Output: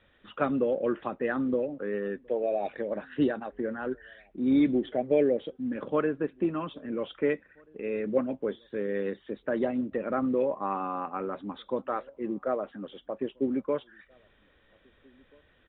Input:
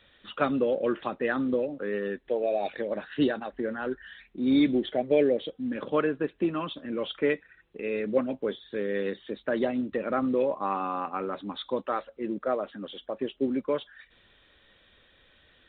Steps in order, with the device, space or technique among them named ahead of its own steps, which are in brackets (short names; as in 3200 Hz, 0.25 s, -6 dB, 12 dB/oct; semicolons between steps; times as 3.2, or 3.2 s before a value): shout across a valley (air absorption 420 m; outdoor echo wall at 280 m, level -30 dB)